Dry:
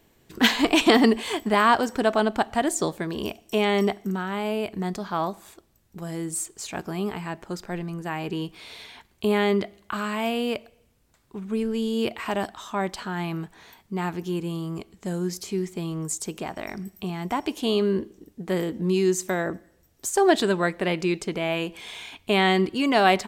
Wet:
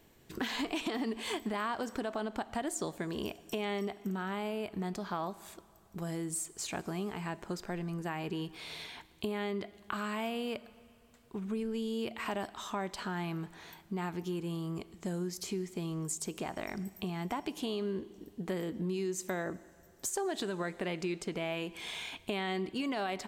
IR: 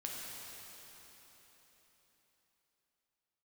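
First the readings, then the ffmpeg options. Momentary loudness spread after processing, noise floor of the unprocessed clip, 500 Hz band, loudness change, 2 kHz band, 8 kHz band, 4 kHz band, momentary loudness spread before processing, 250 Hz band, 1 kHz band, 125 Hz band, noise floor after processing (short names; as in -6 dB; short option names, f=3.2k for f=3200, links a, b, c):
6 LU, -63 dBFS, -12.5 dB, -12.0 dB, -12.5 dB, -7.5 dB, -12.5 dB, 15 LU, -11.0 dB, -13.0 dB, -8.5 dB, -61 dBFS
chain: -filter_complex "[0:a]alimiter=limit=-15dB:level=0:latency=1:release=94,acompressor=threshold=-33dB:ratio=3,asplit=2[a][b];[1:a]atrim=start_sample=2205,asetrate=61740,aresample=44100[c];[b][c]afir=irnorm=-1:irlink=0,volume=-15dB[d];[a][d]amix=inputs=2:normalize=0,volume=-2.5dB"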